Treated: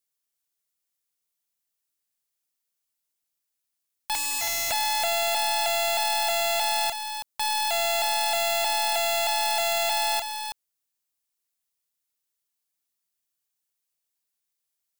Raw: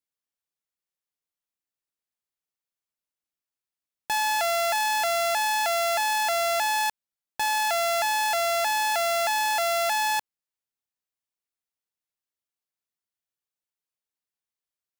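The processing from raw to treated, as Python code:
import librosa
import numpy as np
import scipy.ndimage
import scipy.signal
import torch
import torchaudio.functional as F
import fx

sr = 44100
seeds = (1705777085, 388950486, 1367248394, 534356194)

p1 = fx.high_shelf(x, sr, hz=4000.0, db=11.0)
p2 = fx.leveller(p1, sr, passes=5, at=(4.15, 4.71))
p3 = (np.mod(10.0 ** (21.5 / 20.0) * p2 + 1.0, 2.0) - 1.0) / 10.0 ** (21.5 / 20.0)
y = p3 + fx.echo_single(p3, sr, ms=325, db=-7.0, dry=0)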